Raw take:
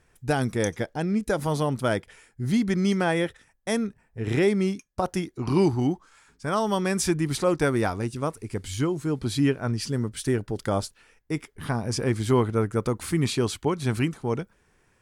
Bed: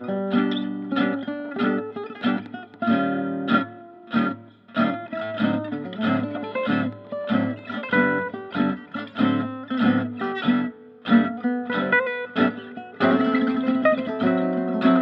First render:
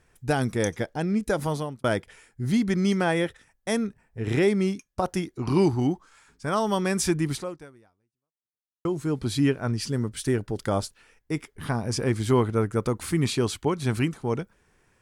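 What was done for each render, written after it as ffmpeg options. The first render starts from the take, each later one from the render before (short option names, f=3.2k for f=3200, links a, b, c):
-filter_complex "[0:a]asplit=3[a][b][c];[a]atrim=end=1.84,asetpts=PTS-STARTPTS,afade=t=out:st=1.44:d=0.4[d];[b]atrim=start=1.84:end=8.85,asetpts=PTS-STARTPTS,afade=t=in:d=0.004:c=hsin,afade=t=out:st=5.46:d=1.55:c=exp[e];[c]atrim=start=8.85,asetpts=PTS-STARTPTS,afade=t=in:d=0.004:c=hsin[f];[d][e][f]concat=n=3:v=0:a=1"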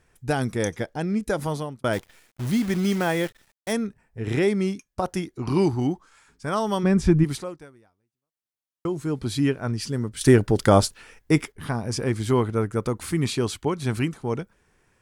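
-filter_complex "[0:a]asettb=1/sr,asplit=3[a][b][c];[a]atrim=end=1.934[d];[b]atrim=start=1.93:end=3.73,asetpts=PTS-STARTPTS,afade=t=in:d=0.004:c=qsin,afade=t=out:st=1.796:d=0.004:c=qsin,acrusher=bits=7:dc=4:mix=0:aa=0.000001[e];[c]atrim=start=3.726[f];[d][e]acrossfade=d=0.004:c1=hsin:c2=qsin[g];[g][f]acrossfade=d=0.004:c1=qsin:c2=hsin,asplit=3[h][i][j];[h]afade=t=out:st=6.83:d=0.02[k];[i]aemphasis=mode=reproduction:type=riaa,afade=t=in:st=6.83:d=0.02,afade=t=out:st=7.23:d=0.02[l];[j]afade=t=in:st=7.23:d=0.02[m];[k][l][m]amix=inputs=3:normalize=0,asplit=3[n][o][p];[n]atrim=end=10.212[q];[o]atrim=start=10.208:end=11.522,asetpts=PTS-STARTPTS,volume=9.5dB[r];[p]atrim=start=11.518[s];[q][r]acrossfade=d=0.004:c1=hsin:c2=hsin[t];[t][s]acrossfade=d=0.004:c1=hsin:c2=hsin"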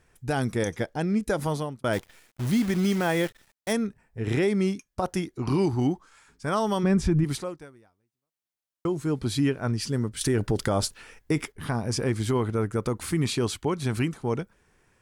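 -af "alimiter=limit=-15dB:level=0:latency=1:release=68"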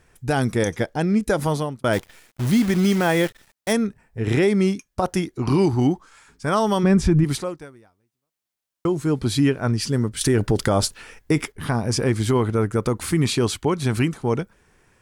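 -af "volume=5.5dB"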